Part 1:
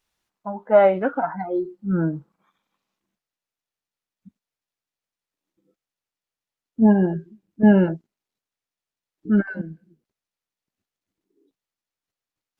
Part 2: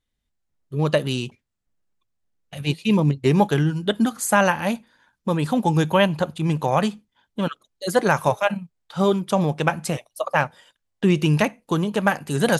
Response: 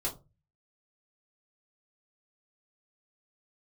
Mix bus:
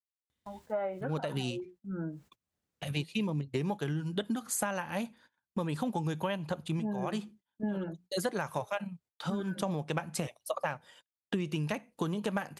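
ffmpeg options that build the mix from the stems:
-filter_complex "[0:a]bandreject=f=60:t=h:w=6,bandreject=f=120:t=h:w=6,bandreject=f=180:t=h:w=6,volume=0.188,asplit=2[s0][s1];[1:a]highpass=f=56:w=0.5412,highpass=f=56:w=1.3066,acompressor=mode=upward:threshold=0.0251:ratio=2.5,adelay=300,volume=0.631[s2];[s1]apad=whole_len=568800[s3];[s2][s3]sidechaincompress=threshold=0.00708:ratio=5:attack=11:release=118[s4];[s0][s4]amix=inputs=2:normalize=0,agate=range=0.0501:threshold=0.002:ratio=16:detection=peak,acompressor=threshold=0.0355:ratio=12"

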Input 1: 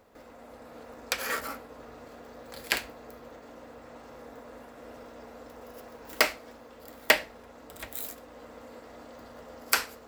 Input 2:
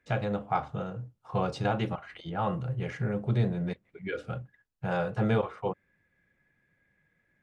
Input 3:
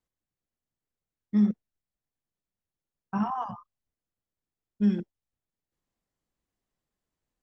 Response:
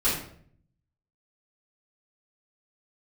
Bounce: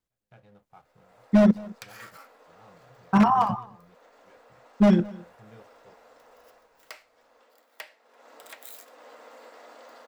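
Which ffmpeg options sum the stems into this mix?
-filter_complex "[0:a]highpass=550,equalizer=f=14000:w=0.7:g=-6,dynaudnorm=f=240:g=3:m=3.98,adelay=700,volume=0.376,afade=t=in:st=7.66:d=0.58:silence=0.375837[s0];[1:a]aeval=exprs='sgn(val(0))*max(abs(val(0))-0.0075,0)':c=same,volume=0.266,asplit=2[s1][s2];[s2]volume=0.224[s3];[2:a]dynaudnorm=f=160:g=9:m=3.55,aeval=exprs='0.299*(abs(mod(val(0)/0.299+3,4)-2)-1)':c=same,volume=1,asplit=3[s4][s5][s6];[s5]volume=0.075[s7];[s6]apad=whole_len=327629[s8];[s1][s8]sidechaingate=range=0.00282:threshold=0.0447:ratio=16:detection=peak[s9];[s0][s9]amix=inputs=2:normalize=0,acompressor=threshold=0.00501:ratio=2,volume=1[s10];[s3][s7]amix=inputs=2:normalize=0,aecho=0:1:214:1[s11];[s4][s10][s11]amix=inputs=3:normalize=0"

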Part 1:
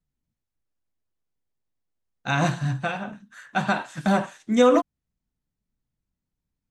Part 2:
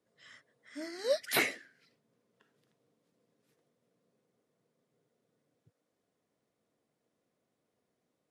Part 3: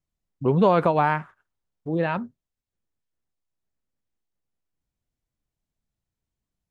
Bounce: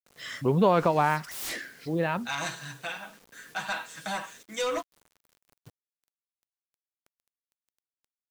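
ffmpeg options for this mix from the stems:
-filter_complex "[0:a]highpass=f=1400:p=1,aecho=1:1:6.2:0.78,asoftclip=type=tanh:threshold=0.1,volume=0.596[s0];[1:a]aeval=exprs='0.0501*sin(PI/2*6.31*val(0)/0.0501)':c=same,volume=0.596[s1];[2:a]volume=0.668,asplit=2[s2][s3];[s3]apad=whole_len=366248[s4];[s1][s4]sidechaincompress=threshold=0.0112:ratio=6:attack=31:release=354[s5];[s0][s5][s2]amix=inputs=3:normalize=0,highshelf=f=2400:g=4.5,acrusher=bits=8:mix=0:aa=0.000001"

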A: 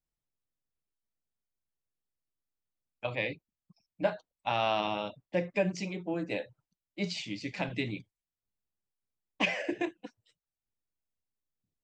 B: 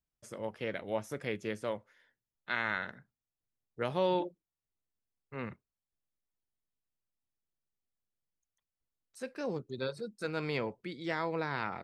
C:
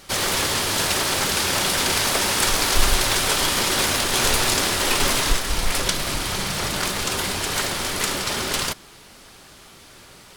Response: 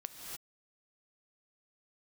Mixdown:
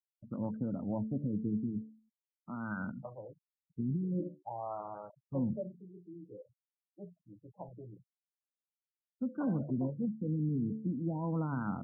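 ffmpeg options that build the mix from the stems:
-filter_complex "[0:a]equalizer=f=250:t=o:w=0.61:g=-13.5,volume=0.335[s0];[1:a]lowshelf=f=320:t=q:w=3:g=7,bandreject=f=73.2:t=h:w=4,bandreject=f=146.4:t=h:w=4,bandreject=f=219.6:t=h:w=4,bandreject=f=292.8:t=h:w=4,bandreject=f=366:t=h:w=4,bandreject=f=439.2:t=h:w=4,bandreject=f=512.4:t=h:w=4,bandreject=f=585.6:t=h:w=4,volume=0.794,equalizer=f=180:t=o:w=1.9:g=4.5,alimiter=level_in=1.19:limit=0.0631:level=0:latency=1:release=67,volume=0.841,volume=1[s1];[s0][s1]amix=inputs=2:normalize=0,afftfilt=real='re*gte(hypot(re,im),0.00316)':imag='im*gte(hypot(re,im),0.00316)':win_size=1024:overlap=0.75,lowpass=3700,afftfilt=real='re*lt(b*sr/1024,440*pow(1600/440,0.5+0.5*sin(2*PI*0.45*pts/sr)))':imag='im*lt(b*sr/1024,440*pow(1600/440,0.5+0.5*sin(2*PI*0.45*pts/sr)))':win_size=1024:overlap=0.75"

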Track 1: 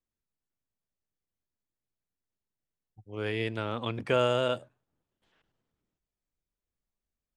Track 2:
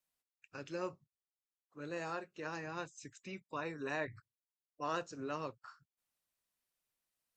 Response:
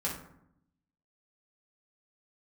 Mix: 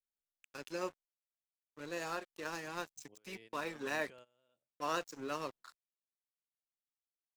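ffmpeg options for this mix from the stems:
-filter_complex "[0:a]equalizer=f=100:w=3.5:g=-14.5,acompressor=threshold=0.0224:ratio=6,alimiter=level_in=2:limit=0.0631:level=0:latency=1:release=19,volume=0.501,volume=0.141[s0];[1:a]highpass=200,aeval=exprs='sgn(val(0))*max(abs(val(0))-0.00211,0)':c=same,volume=1.26,asplit=2[s1][s2];[s2]apad=whole_len=324684[s3];[s0][s3]sidechaingate=range=0.0891:threshold=0.001:ratio=16:detection=peak[s4];[s4][s1]amix=inputs=2:normalize=0,highshelf=f=4400:g=8.5"

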